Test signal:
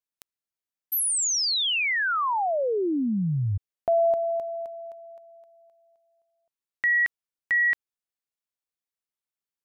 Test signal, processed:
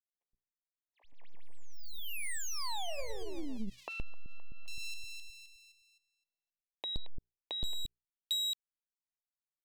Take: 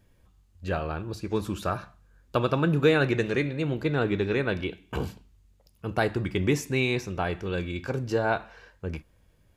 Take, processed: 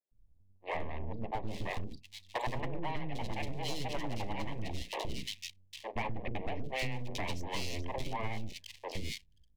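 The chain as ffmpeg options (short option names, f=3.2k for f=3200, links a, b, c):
-filter_complex "[0:a]lowpass=4.3k,bandreject=f=60:t=h:w=6,bandreject=f=120:t=h:w=6,bandreject=f=180:t=h:w=6,bandreject=f=240:t=h:w=6,bandreject=f=300:t=h:w=6,bandreject=f=360:t=h:w=6,anlmdn=1,aeval=exprs='abs(val(0))':c=same,asuperstop=centerf=1400:order=4:qfactor=1.7,acrossover=split=450|2900[a][b][c];[a]adelay=120[d];[c]adelay=800[e];[d][b][e]amix=inputs=3:normalize=0,acompressor=threshold=-39dB:ratio=6:attack=52:release=100:knee=6:detection=peak,asoftclip=type=hard:threshold=-31.5dB,volume=4dB"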